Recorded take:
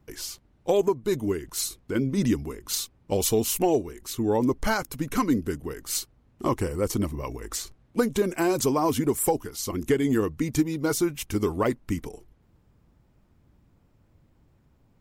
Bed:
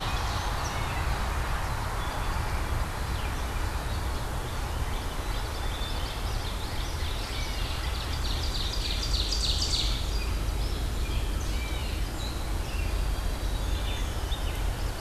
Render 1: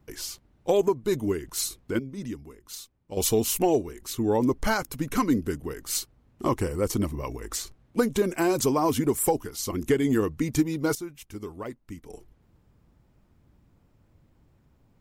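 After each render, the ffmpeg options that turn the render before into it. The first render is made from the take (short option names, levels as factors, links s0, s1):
-filter_complex "[0:a]asplit=5[s0][s1][s2][s3][s4];[s0]atrim=end=1.992[s5];[s1]atrim=start=1.988:end=3.172,asetpts=PTS-STARTPTS,volume=0.266[s6];[s2]atrim=start=3.168:end=10.952[s7];[s3]atrim=start=10.948:end=12.092,asetpts=PTS-STARTPTS,volume=0.251[s8];[s4]atrim=start=12.088[s9];[s5][s6]acrossfade=d=0.004:c1=hsin:c2=hsin[s10];[s10][s7]acrossfade=d=0.004:c1=hsin:c2=hsin[s11];[s11][s8]acrossfade=d=0.004:c1=hsin:c2=hsin[s12];[s12][s9]acrossfade=d=0.004:c1=hsin:c2=hsin"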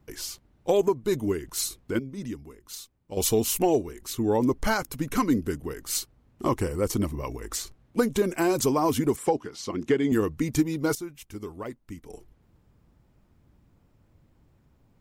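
-filter_complex "[0:a]asettb=1/sr,asplit=3[s0][s1][s2];[s0]atrim=end=9.164[s3];[s1]atrim=start=9.16:end=10.12,asetpts=PTS-STARTPTS,afade=t=in:d=0.004:c=qsin,afade=t=out:st=0.956:d=0.004:c=qsin,highpass=140,lowpass=4800[s4];[s2]atrim=start=10.116[s5];[s3][s4]acrossfade=d=0.004:c1=hsin:c2=qsin[s6];[s6][s5]acrossfade=d=0.004:c1=qsin:c2=hsin"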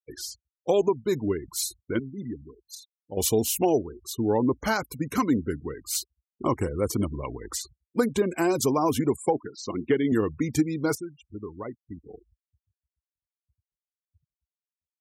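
-af "afftfilt=real='re*gte(hypot(re,im),0.0141)':imag='im*gte(hypot(re,im),0.0141)':win_size=1024:overlap=0.75,highpass=f=62:w=0.5412,highpass=f=62:w=1.3066"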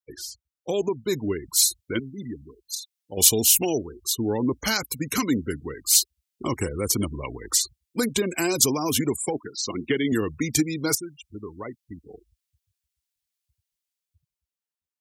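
-filter_complex "[0:a]acrossover=split=390|2200[s0][s1][s2];[s1]alimiter=level_in=1.06:limit=0.0631:level=0:latency=1:release=25,volume=0.944[s3];[s2]dynaudnorm=f=130:g=17:m=3.98[s4];[s0][s3][s4]amix=inputs=3:normalize=0"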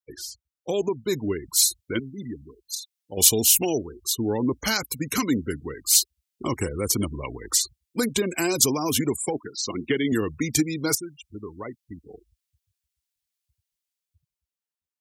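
-af anull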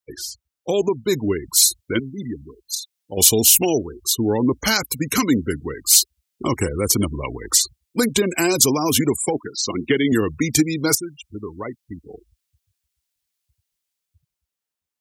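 -af "volume=1.88,alimiter=limit=0.891:level=0:latency=1"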